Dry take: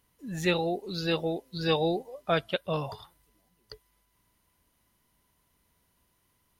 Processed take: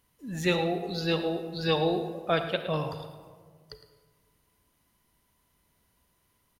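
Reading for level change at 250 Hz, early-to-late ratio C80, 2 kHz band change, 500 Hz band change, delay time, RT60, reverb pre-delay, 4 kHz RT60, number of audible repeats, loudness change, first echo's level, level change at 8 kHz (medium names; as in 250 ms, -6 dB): +1.0 dB, 9.0 dB, +0.5 dB, +1.0 dB, 109 ms, 1.7 s, 31 ms, 0.85 s, 1, +0.5 dB, -12.5 dB, no reading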